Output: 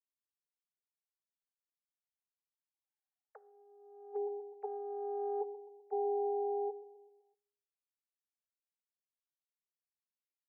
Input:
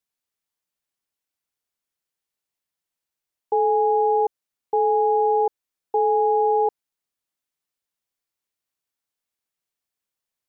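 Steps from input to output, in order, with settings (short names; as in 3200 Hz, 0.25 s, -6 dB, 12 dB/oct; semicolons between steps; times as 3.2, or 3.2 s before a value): sine-wave speech; Doppler pass-by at 3.03, 19 m/s, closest 3.3 m; tilt -4.5 dB/oct; feedback echo 0.127 s, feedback 49%, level -14.5 dB; negative-ratio compressor -37 dBFS, ratio -0.5; elliptic high-pass 440 Hz; on a send at -18.5 dB: reverb RT60 0.65 s, pre-delay 5 ms; on the sum: gain +3 dB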